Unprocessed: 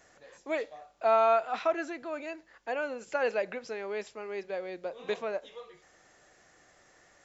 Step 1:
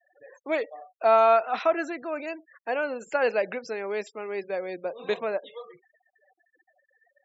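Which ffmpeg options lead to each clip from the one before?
-af "afftfilt=real='re*gte(hypot(re,im),0.00398)':imag='im*gte(hypot(re,im),0.00398)':win_size=1024:overlap=0.75,volume=1.78"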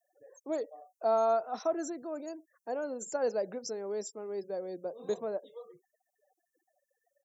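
-af "firequalizer=gain_entry='entry(260,0);entry(2500,-24);entry(5800,12)':delay=0.05:min_phase=1,volume=0.708"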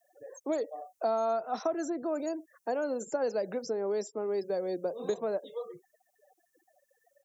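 -filter_complex "[0:a]acrossover=split=260|1700[s0][s1][s2];[s0]acompressor=threshold=0.002:ratio=4[s3];[s1]acompressor=threshold=0.0112:ratio=4[s4];[s2]acompressor=threshold=0.00141:ratio=4[s5];[s3][s4][s5]amix=inputs=3:normalize=0,volume=2.82"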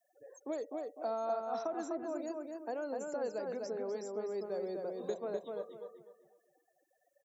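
-filter_complex "[0:a]asplit=2[s0][s1];[s1]adelay=251,lowpass=f=2700:p=1,volume=0.708,asplit=2[s2][s3];[s3]adelay=251,lowpass=f=2700:p=1,volume=0.29,asplit=2[s4][s5];[s5]adelay=251,lowpass=f=2700:p=1,volume=0.29,asplit=2[s6][s7];[s7]adelay=251,lowpass=f=2700:p=1,volume=0.29[s8];[s0][s2][s4][s6][s8]amix=inputs=5:normalize=0,volume=0.422"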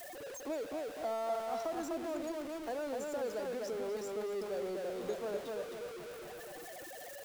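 -af "aeval=exprs='val(0)+0.5*0.0112*sgn(val(0))':c=same,volume=0.75"

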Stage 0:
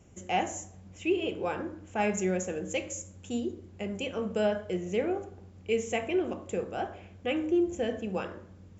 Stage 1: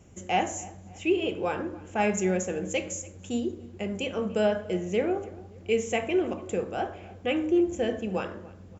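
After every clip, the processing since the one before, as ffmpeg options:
-filter_complex "[0:a]asplit=2[s0][s1];[s1]adelay=287,lowpass=f=1900:p=1,volume=0.106,asplit=2[s2][s3];[s3]adelay=287,lowpass=f=1900:p=1,volume=0.43,asplit=2[s4][s5];[s5]adelay=287,lowpass=f=1900:p=1,volume=0.43[s6];[s0][s2][s4][s6]amix=inputs=4:normalize=0,volume=1.41"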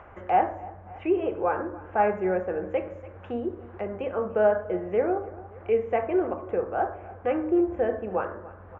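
-filter_complex "[0:a]lowpass=f=1500:w=0.5412,lowpass=f=1500:w=1.3066,equalizer=f=180:w=0.77:g=-14.5,acrossover=split=710[s0][s1];[s1]acompressor=mode=upward:threshold=0.00631:ratio=2.5[s2];[s0][s2]amix=inputs=2:normalize=0,volume=2.24"

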